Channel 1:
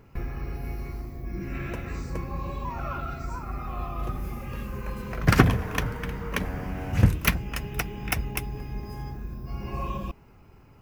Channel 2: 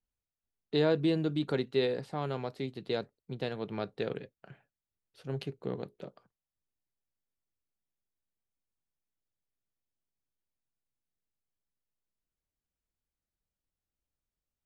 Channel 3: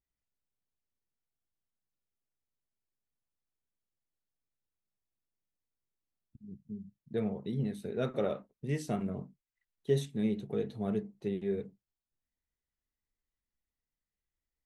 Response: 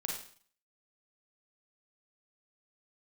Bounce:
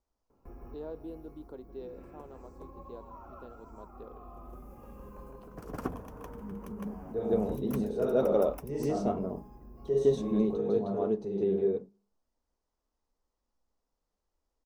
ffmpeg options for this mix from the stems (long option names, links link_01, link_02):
-filter_complex "[0:a]adelay=300,volume=-16dB,asplit=2[link_01][link_02];[link_02]volume=-3dB[link_03];[1:a]volume=-19.5dB,asplit=3[link_04][link_05][link_06];[link_05]volume=-19dB[link_07];[2:a]acontrast=63,lowpass=frequency=4800:width_type=q:width=2,volume=1dB,asplit=3[link_08][link_09][link_10];[link_09]volume=-12dB[link_11];[link_10]volume=-6.5dB[link_12];[link_06]apad=whole_len=489982[link_13];[link_01][link_13]sidechaincompress=threshold=-58dB:ratio=8:attack=32:release=973[link_14];[link_14][link_08]amix=inputs=2:normalize=0,acrossover=split=280|3000[link_15][link_16][link_17];[link_16]acompressor=threshold=-50dB:ratio=6[link_18];[link_15][link_18][link_17]amix=inputs=3:normalize=0,alimiter=level_in=9dB:limit=-24dB:level=0:latency=1:release=144,volume=-9dB,volume=0dB[link_19];[3:a]atrim=start_sample=2205[link_20];[link_11][link_20]afir=irnorm=-1:irlink=0[link_21];[link_03][link_07][link_12]amix=inputs=3:normalize=0,aecho=0:1:160:1[link_22];[link_04][link_19][link_21][link_22]amix=inputs=4:normalize=0,equalizer=frequency=125:width_type=o:width=1:gain=-9,equalizer=frequency=250:width_type=o:width=1:gain=5,equalizer=frequency=500:width_type=o:width=1:gain=5,equalizer=frequency=1000:width_type=o:width=1:gain=7,equalizer=frequency=2000:width_type=o:width=1:gain=-12,equalizer=frequency=4000:width_type=o:width=1:gain=-9"